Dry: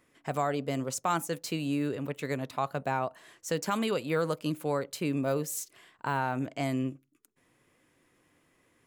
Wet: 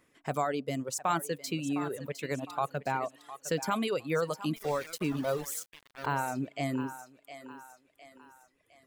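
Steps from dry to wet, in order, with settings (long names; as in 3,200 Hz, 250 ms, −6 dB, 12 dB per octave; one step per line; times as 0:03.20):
feedback echo with a high-pass in the loop 709 ms, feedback 46%, high-pass 340 Hz, level −10 dB
0:04.56–0:06.06: centre clipping without the shift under −35.5 dBFS
reverb reduction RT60 1.6 s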